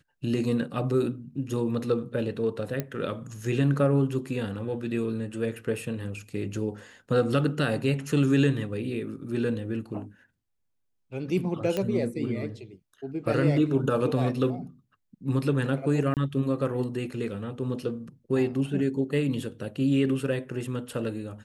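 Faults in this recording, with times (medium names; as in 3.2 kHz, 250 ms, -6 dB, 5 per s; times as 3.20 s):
2.80 s: pop -15 dBFS
11.77 s: pop -15 dBFS
16.14–16.17 s: dropout 28 ms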